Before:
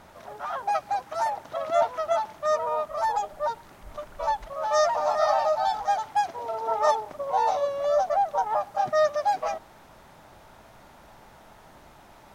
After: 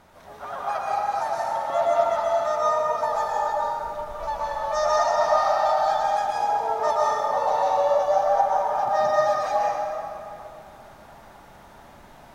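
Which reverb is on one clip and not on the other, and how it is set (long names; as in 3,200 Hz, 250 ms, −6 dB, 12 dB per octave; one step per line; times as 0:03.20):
dense smooth reverb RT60 2.7 s, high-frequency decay 0.6×, pre-delay 105 ms, DRR −6 dB
level −4 dB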